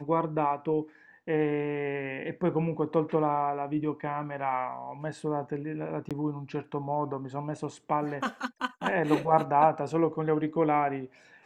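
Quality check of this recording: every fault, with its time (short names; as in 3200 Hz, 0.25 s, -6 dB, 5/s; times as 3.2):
6.09–6.11 gap 17 ms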